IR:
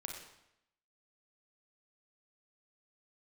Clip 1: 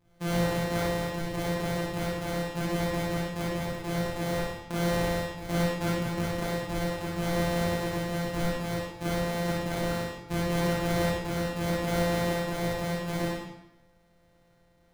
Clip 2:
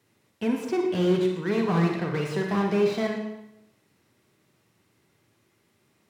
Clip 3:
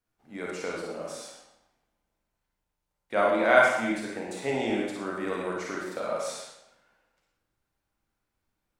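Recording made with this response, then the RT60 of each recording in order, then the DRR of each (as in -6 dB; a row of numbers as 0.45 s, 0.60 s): 2; 0.80 s, 0.80 s, 0.80 s; -8.0 dB, 1.0 dB, -4.0 dB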